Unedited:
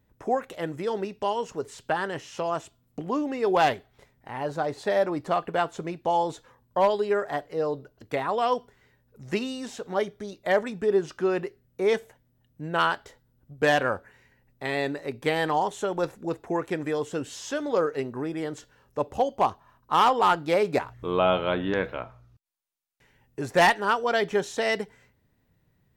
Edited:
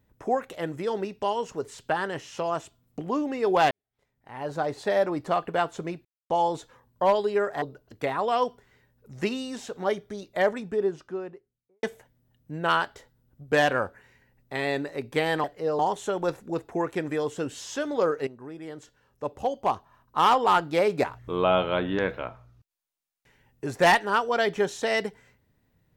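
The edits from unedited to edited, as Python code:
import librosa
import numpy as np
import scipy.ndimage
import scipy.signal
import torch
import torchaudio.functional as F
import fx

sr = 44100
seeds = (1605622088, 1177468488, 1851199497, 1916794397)

y = fx.studio_fade_out(x, sr, start_s=10.37, length_s=1.56)
y = fx.edit(y, sr, fx.fade_in_span(start_s=3.71, length_s=0.86, curve='qua'),
    fx.insert_silence(at_s=6.05, length_s=0.25),
    fx.move(start_s=7.37, length_s=0.35, to_s=15.54),
    fx.fade_in_from(start_s=18.02, length_s=2.0, floor_db=-12.0), tone=tone)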